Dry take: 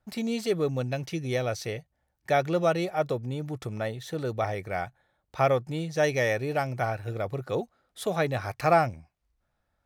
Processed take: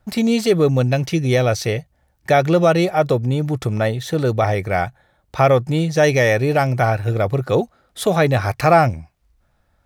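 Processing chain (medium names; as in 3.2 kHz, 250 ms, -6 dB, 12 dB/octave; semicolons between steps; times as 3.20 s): bass shelf 170 Hz +4.5 dB; in parallel at +1.5 dB: peak limiter -19 dBFS, peak gain reduction 10 dB; on the sum: trim +4.5 dB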